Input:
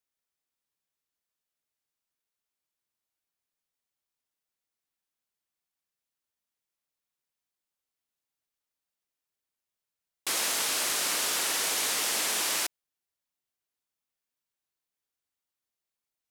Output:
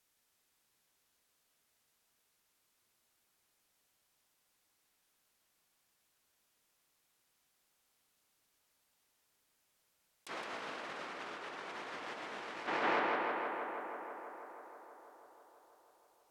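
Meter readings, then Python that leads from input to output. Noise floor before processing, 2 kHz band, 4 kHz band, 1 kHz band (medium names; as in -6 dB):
under -85 dBFS, -6.0 dB, -19.0 dB, 0.0 dB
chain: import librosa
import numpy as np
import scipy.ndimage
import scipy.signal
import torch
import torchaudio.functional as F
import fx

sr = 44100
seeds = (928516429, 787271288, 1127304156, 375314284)

y = fx.env_lowpass_down(x, sr, base_hz=1700.0, full_db=-28.0)
y = fx.echo_tape(y, sr, ms=162, feedback_pct=85, wet_db=-6, lp_hz=3400.0, drive_db=21.0, wow_cents=16)
y = fx.over_compress(y, sr, threshold_db=-43.0, ratio=-0.5)
y = y * librosa.db_to_amplitude(5.0)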